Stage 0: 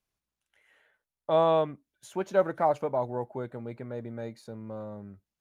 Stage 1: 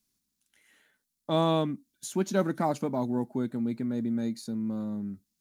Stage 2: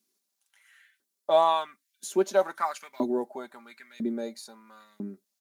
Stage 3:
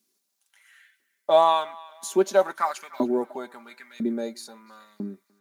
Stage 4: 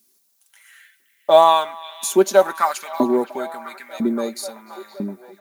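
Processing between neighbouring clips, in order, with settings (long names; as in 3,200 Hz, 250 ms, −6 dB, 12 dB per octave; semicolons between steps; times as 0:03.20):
drawn EQ curve 110 Hz 0 dB, 240 Hz +14 dB, 520 Hz −6 dB, 1,200 Hz −2 dB, 2,900 Hz +2 dB, 4,200 Hz +10 dB, 7,300 Hz +12 dB
comb filter 5.1 ms, depth 43%; auto-filter high-pass saw up 1 Hz 290–2,600 Hz
feedback echo with a band-pass in the loop 298 ms, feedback 57%, band-pass 2,000 Hz, level −19 dB; level +3.5 dB
high-shelf EQ 9,500 Hz +11 dB; echo through a band-pass that steps 520 ms, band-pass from 2,800 Hz, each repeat −0.7 octaves, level −11 dB; level +6 dB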